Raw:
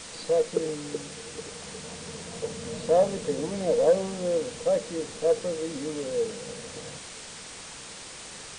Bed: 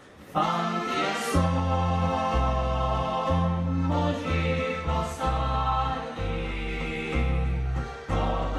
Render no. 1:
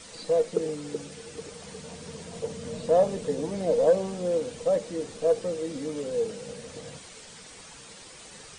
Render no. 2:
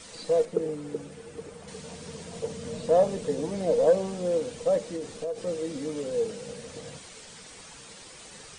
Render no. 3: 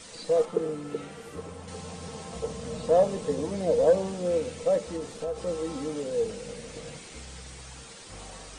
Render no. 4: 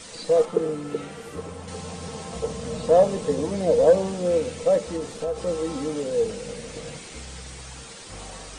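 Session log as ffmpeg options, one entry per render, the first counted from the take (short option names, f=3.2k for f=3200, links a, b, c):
-af "afftdn=nr=8:nf=-43"
-filter_complex "[0:a]asettb=1/sr,asplit=3[a][b][c];[a]atrim=end=0.454[d];[b]atrim=start=0.45:end=1.68,asetpts=PTS-STARTPTS,afade=t=in:d=0.004:c=qsin,afade=t=out:st=1.226:d=0.004:c=qsin,equalizer=f=5.3k:w=0.53:g=-9.5[e];[c]atrim=start=1.676[f];[d][e]acrossfade=d=0.004:c1=hsin:c2=qsin[g];[g][f]acrossfade=d=0.004:c1=qsin:c2=hsin,asettb=1/sr,asplit=3[h][i][j];[h]atrim=end=4.964[k];[i]atrim=start=4.96:end=5.47,asetpts=PTS-STARTPTS,afade=t=in:d=0.004:c=qsin,afade=t=out:st=0.506:d=0.004:c=qsin,acompressor=threshold=-29dB:ratio=5:attack=3.2:release=140:knee=1:detection=peak[l];[j]atrim=start=5.466[m];[k][l]acrossfade=d=0.004:c1=hsin:c2=qsin[n];[n][m]acrossfade=d=0.004:c1=qsin:c2=hsin"
-filter_complex "[1:a]volume=-20dB[a];[0:a][a]amix=inputs=2:normalize=0"
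-af "volume=4.5dB"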